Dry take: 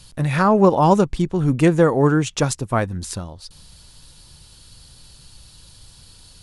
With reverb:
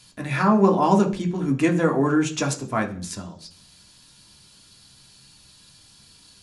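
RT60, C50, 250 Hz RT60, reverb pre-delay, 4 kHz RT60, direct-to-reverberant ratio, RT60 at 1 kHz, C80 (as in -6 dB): 0.40 s, 13.5 dB, 0.55 s, 3 ms, 0.55 s, 2.0 dB, 0.40 s, 18.0 dB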